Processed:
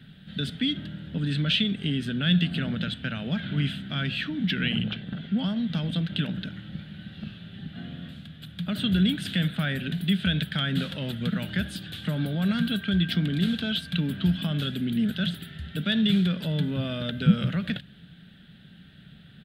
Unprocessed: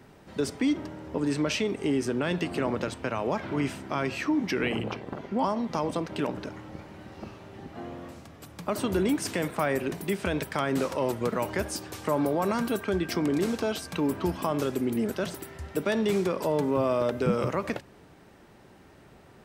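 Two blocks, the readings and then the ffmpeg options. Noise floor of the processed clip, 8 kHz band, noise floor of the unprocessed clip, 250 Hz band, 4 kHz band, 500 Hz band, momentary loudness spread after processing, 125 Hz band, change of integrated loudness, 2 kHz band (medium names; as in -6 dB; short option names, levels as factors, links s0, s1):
-50 dBFS, -10.5 dB, -54 dBFS, +3.0 dB, +10.5 dB, -11.5 dB, 15 LU, +9.0 dB, +2.0 dB, +2.5 dB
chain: -af "firequalizer=gain_entry='entry(100,0);entry(170,11);entry(340,-14);entry(690,-12);entry(1000,-23);entry(1500,3);entry(2200,-4);entry(3400,14);entry(5600,-17);entry(10000,-8)':delay=0.05:min_phase=1,volume=1.19"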